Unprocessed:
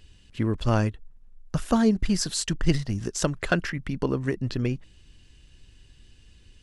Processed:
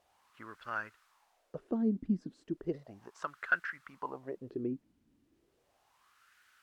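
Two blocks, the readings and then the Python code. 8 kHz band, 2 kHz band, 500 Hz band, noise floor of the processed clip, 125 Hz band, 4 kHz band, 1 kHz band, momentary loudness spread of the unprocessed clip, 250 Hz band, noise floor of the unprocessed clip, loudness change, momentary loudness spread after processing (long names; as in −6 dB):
below −30 dB, −3.5 dB, −12.0 dB, −75 dBFS, −20.5 dB, −26.5 dB, −8.0 dB, 9 LU, −10.5 dB, −54 dBFS, −10.5 dB, 17 LU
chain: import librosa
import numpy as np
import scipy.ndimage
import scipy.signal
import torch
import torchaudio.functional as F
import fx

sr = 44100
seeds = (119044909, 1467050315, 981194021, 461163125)

y = fx.dmg_noise_colour(x, sr, seeds[0], colour='blue', level_db=-43.0)
y = fx.wah_lfo(y, sr, hz=0.35, low_hz=250.0, high_hz=1500.0, q=4.7)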